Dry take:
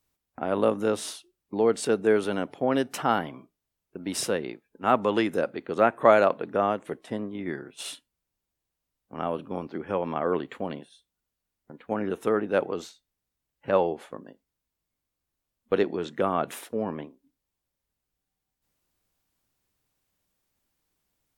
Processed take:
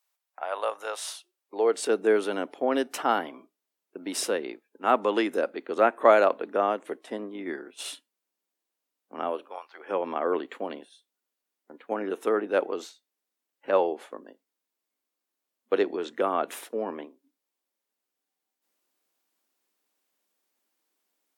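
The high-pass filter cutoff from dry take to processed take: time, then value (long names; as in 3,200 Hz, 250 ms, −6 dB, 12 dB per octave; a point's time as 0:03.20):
high-pass filter 24 dB per octave
0:01.06 640 Hz
0:01.98 260 Hz
0:09.27 260 Hz
0:09.70 1,000 Hz
0:09.93 270 Hz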